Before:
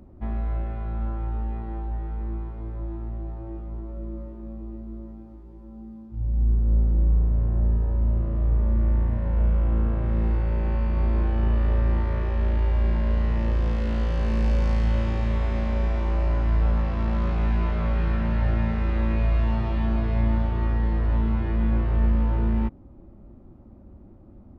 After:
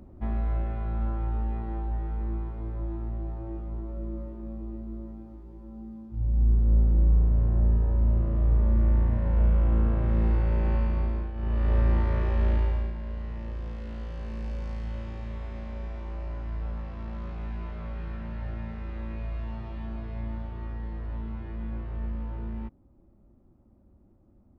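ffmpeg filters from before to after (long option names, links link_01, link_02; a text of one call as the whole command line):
ffmpeg -i in.wav -af "volume=12dB,afade=type=out:start_time=10.76:duration=0.57:silence=0.237137,afade=type=in:start_time=11.33:duration=0.45:silence=0.237137,afade=type=out:start_time=12.53:duration=0.4:silence=0.266073" out.wav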